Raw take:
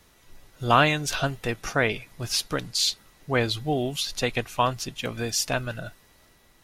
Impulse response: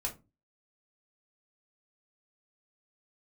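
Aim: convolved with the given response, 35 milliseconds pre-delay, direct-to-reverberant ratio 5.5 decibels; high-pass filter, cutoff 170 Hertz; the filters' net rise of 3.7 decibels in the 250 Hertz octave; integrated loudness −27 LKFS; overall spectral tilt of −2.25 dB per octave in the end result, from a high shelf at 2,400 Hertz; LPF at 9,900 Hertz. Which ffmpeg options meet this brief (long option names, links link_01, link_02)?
-filter_complex "[0:a]highpass=170,lowpass=9900,equalizer=frequency=250:width_type=o:gain=5.5,highshelf=frequency=2400:gain=7,asplit=2[link_01][link_02];[1:a]atrim=start_sample=2205,adelay=35[link_03];[link_02][link_03]afir=irnorm=-1:irlink=0,volume=-7.5dB[link_04];[link_01][link_04]amix=inputs=2:normalize=0,volume=-5.5dB"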